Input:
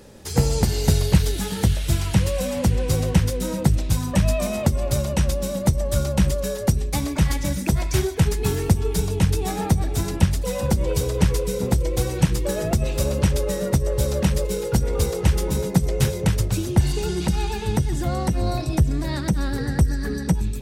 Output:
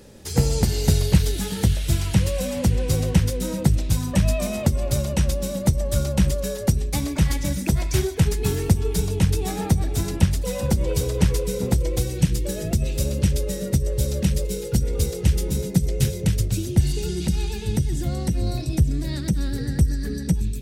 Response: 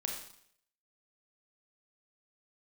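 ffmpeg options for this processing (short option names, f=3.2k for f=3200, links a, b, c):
-af "asetnsamples=n=441:p=0,asendcmd='11.99 equalizer g -13.5',equalizer=f=1k:t=o:w=1.6:g=-4"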